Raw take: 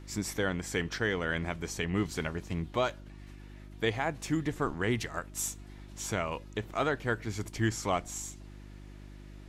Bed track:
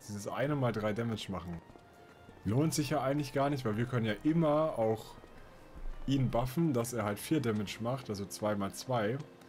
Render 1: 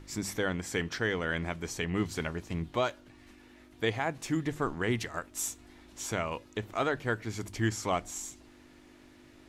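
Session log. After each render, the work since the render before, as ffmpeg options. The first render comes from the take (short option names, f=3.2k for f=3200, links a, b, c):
-af "bandreject=f=50:t=h:w=4,bandreject=f=100:t=h:w=4,bandreject=f=150:t=h:w=4,bandreject=f=200:t=h:w=4"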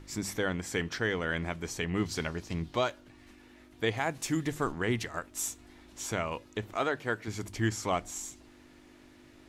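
-filter_complex "[0:a]asettb=1/sr,asplit=3[a][b][c];[a]atrim=end=2.064[d];[b]atrim=start=2.06:end=2.84,asetpts=PTS-STARTPTS,afade=t=in:d=0.004:c=qsin,afade=t=out:st=0.776:d=0.004:c=qsin,equalizer=f=5k:t=o:w=0.81:g=7[e];[c]atrim=start=2.836[f];[d][e]acrossfade=d=0.004:c1=hsin:c2=qsin[g];[g][f]acrossfade=d=0.004:c1=qsin:c2=hsin,asettb=1/sr,asplit=3[h][i][j];[h]atrim=end=3.974[k];[i]atrim=start=3.97:end=4.72,asetpts=PTS-STARTPTS,afade=t=in:d=0.004:c=qsin,afade=t=out:st=0.746:d=0.004:c=qsin,highshelf=f=4.4k:g=8[l];[j]atrim=start=4.716[m];[k][l]acrossfade=d=0.004:c1=hsin:c2=qsin[n];[n][m]acrossfade=d=0.004:c1=qsin:c2=hsin,asettb=1/sr,asplit=3[o][p][q];[o]atrim=end=6.774[r];[p]atrim=start=6.77:end=7.28,asetpts=PTS-STARTPTS,afade=t=in:d=0.004:c=qsin,afade=t=out:st=0.506:d=0.004:c=qsin,highpass=f=200:p=1[s];[q]atrim=start=7.276[t];[r][s]acrossfade=d=0.004:c1=hsin:c2=qsin[u];[u][t]acrossfade=d=0.004:c1=qsin:c2=hsin"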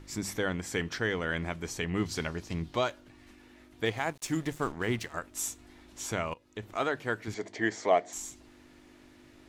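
-filter_complex "[0:a]asettb=1/sr,asplit=3[a][b][c];[a]atrim=end=3.854[d];[b]atrim=start=3.85:end=5.13,asetpts=PTS-STARTPTS,afade=t=in:d=0.004:c=qsin,afade=t=out:st=1.276:d=0.004:c=qsin,aeval=exprs='sgn(val(0))*max(abs(val(0))-0.00447,0)':c=same[e];[c]atrim=start=5.126[f];[d][e]acrossfade=d=0.004:c1=hsin:c2=qsin[g];[g][f]acrossfade=d=0.004:c1=qsin:c2=hsin,asettb=1/sr,asplit=3[h][i][j];[h]atrim=end=7.344[k];[i]atrim=start=7.34:end=8.13,asetpts=PTS-STARTPTS,afade=t=in:d=0.004:c=qsin,afade=t=out:st=0.786:d=0.004:c=qsin,highpass=250,equalizer=f=440:t=q:w=4:g=8,equalizer=f=660:t=q:w=4:g=10,equalizer=f=1.3k:t=q:w=4:g=-5,equalizer=f=1.9k:t=q:w=4:g=9,equalizer=f=2.7k:t=q:w=4:g=-5,equalizer=f=5.4k:t=q:w=4:g=-4,lowpass=f=6.3k:w=0.5412,lowpass=f=6.3k:w=1.3066[l];[j]atrim=start=8.126[m];[k][l]acrossfade=d=0.004:c1=hsin:c2=qsin[n];[n][m]acrossfade=d=0.004:c1=qsin:c2=hsin,asplit=2[o][p];[o]atrim=end=6.34,asetpts=PTS-STARTPTS,afade=t=out:st=6.336:d=0.004:c=hsin:silence=0.0891251[q];[p]atrim=start=6.34,asetpts=PTS-STARTPTS,afade=t=in:d=0.47:silence=0.0891251[r];[q][r]concat=n=2:v=0:a=1"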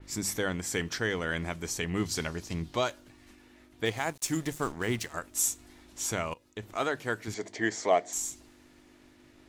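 -af "agate=range=-33dB:threshold=-53dB:ratio=3:detection=peak,adynamicequalizer=threshold=0.00282:dfrequency=4700:dqfactor=0.7:tfrequency=4700:tqfactor=0.7:attack=5:release=100:ratio=0.375:range=4:mode=boostabove:tftype=highshelf"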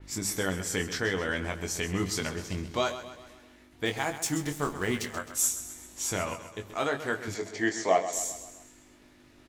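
-filter_complex "[0:a]asplit=2[a][b];[b]adelay=21,volume=-5.5dB[c];[a][c]amix=inputs=2:normalize=0,asplit=2[d][e];[e]aecho=0:1:131|262|393|524|655:0.251|0.128|0.0653|0.0333|0.017[f];[d][f]amix=inputs=2:normalize=0"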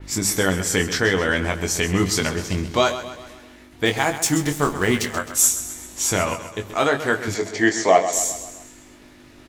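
-af "volume=10dB,alimiter=limit=-3dB:level=0:latency=1"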